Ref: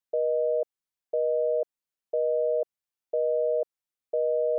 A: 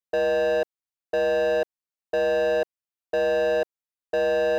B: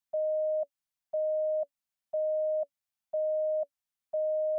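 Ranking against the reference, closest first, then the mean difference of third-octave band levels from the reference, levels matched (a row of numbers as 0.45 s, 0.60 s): B, A; 2.5 dB, 14.0 dB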